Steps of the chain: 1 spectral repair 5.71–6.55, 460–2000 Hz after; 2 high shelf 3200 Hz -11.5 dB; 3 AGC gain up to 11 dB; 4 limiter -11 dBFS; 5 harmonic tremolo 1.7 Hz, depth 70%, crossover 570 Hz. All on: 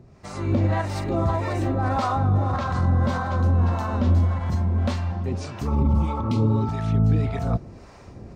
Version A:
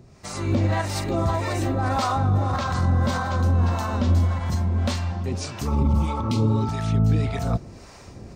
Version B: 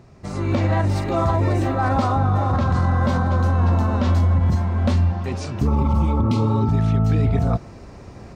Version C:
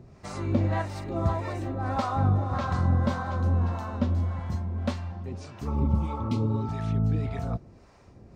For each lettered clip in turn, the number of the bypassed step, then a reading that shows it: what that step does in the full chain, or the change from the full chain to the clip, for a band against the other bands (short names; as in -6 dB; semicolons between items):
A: 2, 4 kHz band +6.5 dB; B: 5, crest factor change -3.5 dB; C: 3, crest factor change +5.0 dB